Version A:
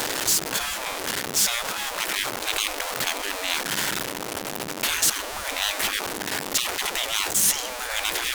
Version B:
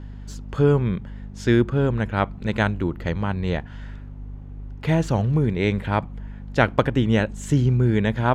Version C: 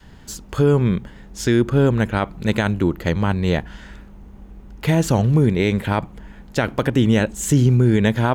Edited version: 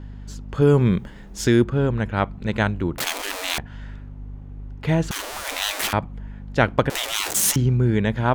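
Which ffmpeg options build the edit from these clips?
-filter_complex "[0:a]asplit=3[s0][s1][s2];[1:a]asplit=5[s3][s4][s5][s6][s7];[s3]atrim=end=0.622[s8];[2:a]atrim=start=0.618:end=1.642[s9];[s4]atrim=start=1.638:end=2.982[s10];[s0]atrim=start=2.978:end=3.582[s11];[s5]atrim=start=3.578:end=5.112[s12];[s1]atrim=start=5.108:end=5.932[s13];[s6]atrim=start=5.928:end=6.902[s14];[s2]atrim=start=6.898:end=7.562[s15];[s7]atrim=start=7.558[s16];[s8][s9]acrossfade=d=0.004:c1=hsin:c2=hsin[s17];[s17][s10]acrossfade=d=0.004:c1=hsin:c2=hsin[s18];[s18][s11]acrossfade=d=0.004:c1=hsin:c2=hsin[s19];[s19][s12]acrossfade=d=0.004:c1=hsin:c2=hsin[s20];[s20][s13]acrossfade=d=0.004:c1=hsin:c2=hsin[s21];[s21][s14]acrossfade=d=0.004:c1=hsin:c2=hsin[s22];[s22][s15]acrossfade=d=0.004:c1=hsin:c2=hsin[s23];[s23][s16]acrossfade=d=0.004:c1=hsin:c2=hsin"

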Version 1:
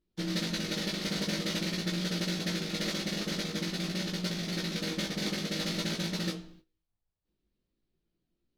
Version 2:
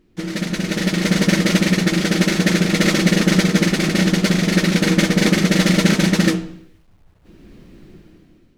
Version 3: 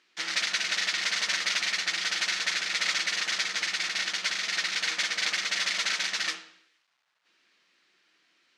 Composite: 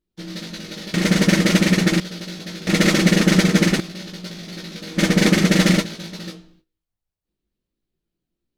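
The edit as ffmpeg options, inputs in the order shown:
-filter_complex "[1:a]asplit=3[s0][s1][s2];[0:a]asplit=4[s3][s4][s5][s6];[s3]atrim=end=0.942[s7];[s0]atrim=start=0.938:end=2.002[s8];[s4]atrim=start=1.998:end=2.672[s9];[s1]atrim=start=2.668:end=3.802[s10];[s5]atrim=start=3.798:end=5.04[s11];[s2]atrim=start=4.94:end=5.86[s12];[s6]atrim=start=5.76[s13];[s7][s8]acrossfade=d=0.004:c1=hsin:c2=hsin[s14];[s14][s9]acrossfade=d=0.004:c1=hsin:c2=hsin[s15];[s15][s10]acrossfade=d=0.004:c1=hsin:c2=hsin[s16];[s16][s11]acrossfade=d=0.004:c1=hsin:c2=hsin[s17];[s17][s12]acrossfade=d=0.1:c1=tri:c2=tri[s18];[s18][s13]acrossfade=d=0.1:c1=tri:c2=tri"

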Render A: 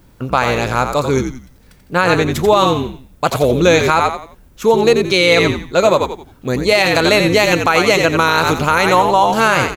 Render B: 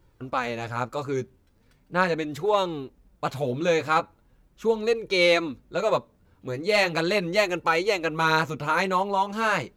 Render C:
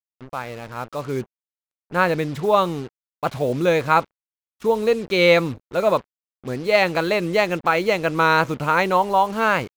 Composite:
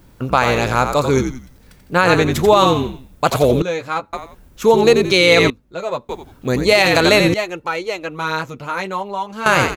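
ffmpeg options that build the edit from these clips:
-filter_complex "[1:a]asplit=3[s0][s1][s2];[0:a]asplit=4[s3][s4][s5][s6];[s3]atrim=end=3.622[s7];[s0]atrim=start=3.618:end=4.132[s8];[s4]atrim=start=4.128:end=5.502[s9];[s1]atrim=start=5.498:end=6.092[s10];[s5]atrim=start=6.088:end=7.342[s11];[s2]atrim=start=7.338:end=9.462[s12];[s6]atrim=start=9.458[s13];[s7][s8]acrossfade=d=0.004:c1=hsin:c2=hsin[s14];[s14][s9]acrossfade=d=0.004:c1=hsin:c2=hsin[s15];[s15][s10]acrossfade=d=0.004:c1=hsin:c2=hsin[s16];[s16][s11]acrossfade=d=0.004:c1=hsin:c2=hsin[s17];[s17][s12]acrossfade=d=0.004:c1=hsin:c2=hsin[s18];[s18][s13]acrossfade=d=0.004:c1=hsin:c2=hsin"

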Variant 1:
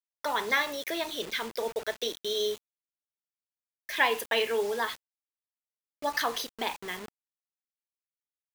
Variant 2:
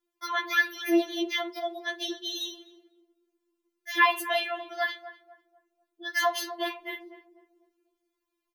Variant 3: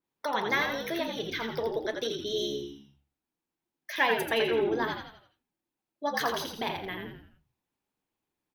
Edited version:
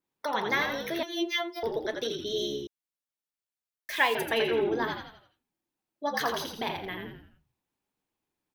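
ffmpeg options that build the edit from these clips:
-filter_complex "[2:a]asplit=3[s0][s1][s2];[s0]atrim=end=1.032[s3];[1:a]atrim=start=1.028:end=1.632[s4];[s1]atrim=start=1.628:end=2.672[s5];[0:a]atrim=start=2.668:end=4.152[s6];[s2]atrim=start=4.148[s7];[s3][s4]acrossfade=d=0.004:c1=hsin:c2=hsin[s8];[s8][s5]acrossfade=d=0.004:c1=hsin:c2=hsin[s9];[s9][s6]acrossfade=d=0.004:c1=hsin:c2=hsin[s10];[s10][s7]acrossfade=d=0.004:c1=hsin:c2=hsin"

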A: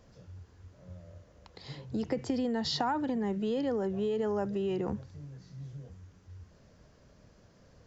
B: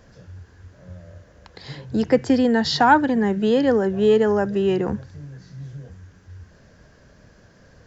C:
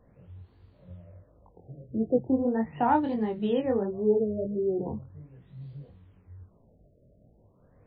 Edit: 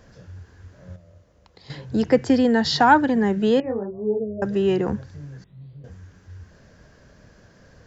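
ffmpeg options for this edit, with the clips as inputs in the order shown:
-filter_complex "[2:a]asplit=2[s0][s1];[1:a]asplit=4[s2][s3][s4][s5];[s2]atrim=end=0.962[s6];[0:a]atrim=start=0.958:end=1.702[s7];[s3]atrim=start=1.698:end=3.602[s8];[s0]atrim=start=3.598:end=4.422[s9];[s4]atrim=start=4.418:end=5.442[s10];[s1]atrim=start=5.438:end=5.842[s11];[s5]atrim=start=5.838[s12];[s6][s7]acrossfade=d=0.004:c1=hsin:c2=hsin[s13];[s13][s8]acrossfade=d=0.004:c1=hsin:c2=hsin[s14];[s14][s9]acrossfade=d=0.004:c1=hsin:c2=hsin[s15];[s15][s10]acrossfade=d=0.004:c1=hsin:c2=hsin[s16];[s16][s11]acrossfade=d=0.004:c1=hsin:c2=hsin[s17];[s17][s12]acrossfade=d=0.004:c1=hsin:c2=hsin"

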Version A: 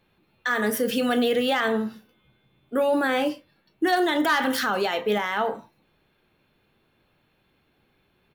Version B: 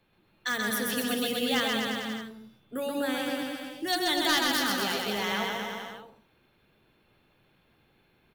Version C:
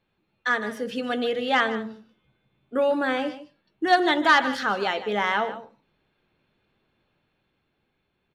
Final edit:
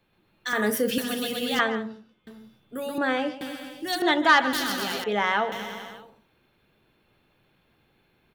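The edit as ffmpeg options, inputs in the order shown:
-filter_complex "[2:a]asplit=4[s0][s1][s2][s3];[1:a]asplit=6[s4][s5][s6][s7][s8][s9];[s4]atrim=end=0.532[s10];[0:a]atrim=start=0.528:end=0.982[s11];[s5]atrim=start=0.978:end=1.592[s12];[s0]atrim=start=1.588:end=2.272[s13];[s6]atrim=start=2.268:end=2.982[s14];[s1]atrim=start=2.978:end=3.412[s15];[s7]atrim=start=3.408:end=4.022[s16];[s2]atrim=start=4.018:end=4.532[s17];[s8]atrim=start=4.528:end=5.042[s18];[s3]atrim=start=5.038:end=5.522[s19];[s9]atrim=start=5.518[s20];[s10][s11]acrossfade=d=0.004:c1=hsin:c2=hsin[s21];[s21][s12]acrossfade=d=0.004:c1=hsin:c2=hsin[s22];[s22][s13]acrossfade=d=0.004:c1=hsin:c2=hsin[s23];[s23][s14]acrossfade=d=0.004:c1=hsin:c2=hsin[s24];[s24][s15]acrossfade=d=0.004:c1=hsin:c2=hsin[s25];[s25][s16]acrossfade=d=0.004:c1=hsin:c2=hsin[s26];[s26][s17]acrossfade=d=0.004:c1=hsin:c2=hsin[s27];[s27][s18]acrossfade=d=0.004:c1=hsin:c2=hsin[s28];[s28][s19]acrossfade=d=0.004:c1=hsin:c2=hsin[s29];[s29][s20]acrossfade=d=0.004:c1=hsin:c2=hsin"

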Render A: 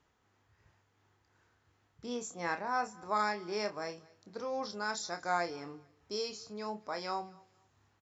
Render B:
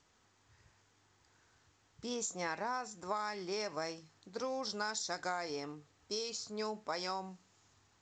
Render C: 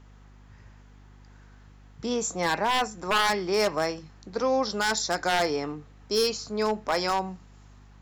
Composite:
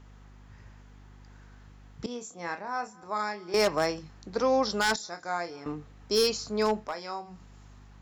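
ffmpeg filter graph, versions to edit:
-filter_complex "[0:a]asplit=3[s0][s1][s2];[2:a]asplit=4[s3][s4][s5][s6];[s3]atrim=end=2.062[s7];[s0]atrim=start=2.058:end=3.542[s8];[s4]atrim=start=3.538:end=4.962[s9];[s1]atrim=start=4.958:end=5.662[s10];[s5]atrim=start=5.658:end=6.95[s11];[s2]atrim=start=6.79:end=7.41[s12];[s6]atrim=start=7.25[s13];[s7][s8]acrossfade=d=0.004:c1=hsin:c2=hsin[s14];[s14][s9]acrossfade=d=0.004:c1=hsin:c2=hsin[s15];[s15][s10]acrossfade=d=0.004:c1=hsin:c2=hsin[s16];[s16][s11]acrossfade=d=0.004:c1=hsin:c2=hsin[s17];[s17][s12]acrossfade=d=0.16:c1=tri:c2=tri[s18];[s18][s13]acrossfade=d=0.16:c1=tri:c2=tri"

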